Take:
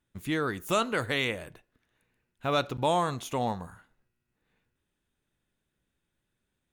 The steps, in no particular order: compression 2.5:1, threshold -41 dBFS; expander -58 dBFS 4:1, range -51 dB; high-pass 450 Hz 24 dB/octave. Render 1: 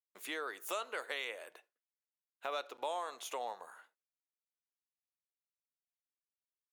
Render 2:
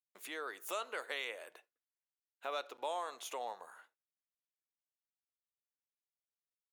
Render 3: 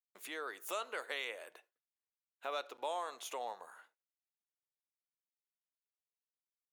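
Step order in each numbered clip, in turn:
expander > high-pass > compression; compression > expander > high-pass; expander > compression > high-pass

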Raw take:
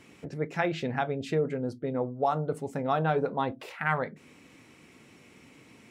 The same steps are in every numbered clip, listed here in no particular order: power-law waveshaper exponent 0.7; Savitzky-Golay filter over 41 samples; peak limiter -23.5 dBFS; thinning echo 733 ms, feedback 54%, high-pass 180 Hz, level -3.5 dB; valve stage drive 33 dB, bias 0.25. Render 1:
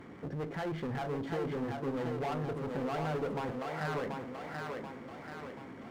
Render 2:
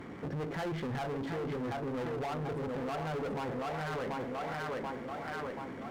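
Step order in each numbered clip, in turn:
peak limiter > Savitzky-Golay filter > valve stage > power-law waveshaper > thinning echo; Savitzky-Golay filter > power-law waveshaper > thinning echo > peak limiter > valve stage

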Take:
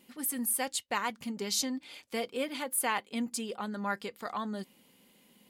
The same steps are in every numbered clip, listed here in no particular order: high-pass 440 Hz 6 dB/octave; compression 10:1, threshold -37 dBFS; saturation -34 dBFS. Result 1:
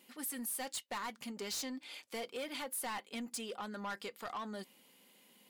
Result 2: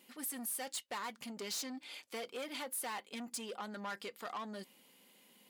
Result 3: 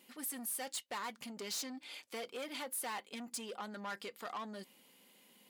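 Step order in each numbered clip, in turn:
high-pass > saturation > compression; saturation > high-pass > compression; saturation > compression > high-pass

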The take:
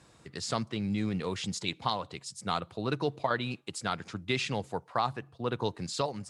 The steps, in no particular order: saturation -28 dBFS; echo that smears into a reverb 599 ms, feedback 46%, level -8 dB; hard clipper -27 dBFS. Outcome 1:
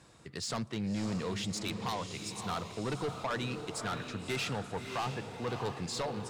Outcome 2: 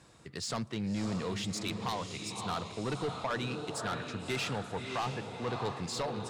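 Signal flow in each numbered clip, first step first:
hard clipper > echo that smears into a reverb > saturation; echo that smears into a reverb > saturation > hard clipper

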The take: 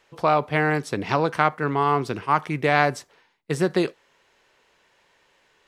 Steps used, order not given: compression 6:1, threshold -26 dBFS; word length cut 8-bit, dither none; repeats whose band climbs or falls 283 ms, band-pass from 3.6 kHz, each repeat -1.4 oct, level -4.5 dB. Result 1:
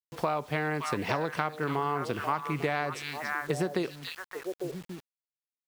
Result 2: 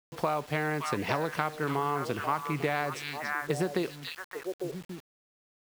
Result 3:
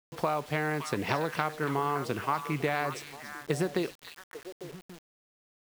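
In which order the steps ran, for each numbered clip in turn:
repeats whose band climbs or falls > word length cut > compression; repeats whose band climbs or falls > compression > word length cut; compression > repeats whose band climbs or falls > word length cut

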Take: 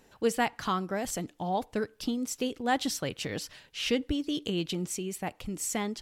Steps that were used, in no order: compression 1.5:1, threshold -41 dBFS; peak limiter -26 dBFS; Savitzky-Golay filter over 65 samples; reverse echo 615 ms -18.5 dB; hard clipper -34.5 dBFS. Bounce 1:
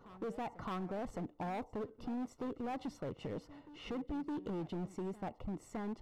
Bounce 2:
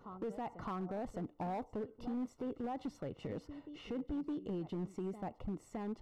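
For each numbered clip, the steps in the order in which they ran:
Savitzky-Golay filter > peak limiter > hard clipper > reverse echo > compression; reverse echo > peak limiter > Savitzky-Golay filter > compression > hard clipper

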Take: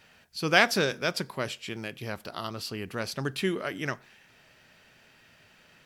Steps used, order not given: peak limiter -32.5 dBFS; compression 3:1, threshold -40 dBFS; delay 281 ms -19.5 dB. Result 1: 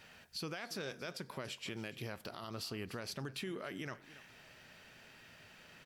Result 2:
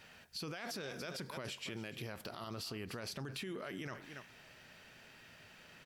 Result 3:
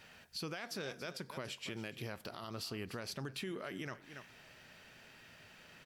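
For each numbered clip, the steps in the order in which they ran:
compression > delay > peak limiter; delay > peak limiter > compression; delay > compression > peak limiter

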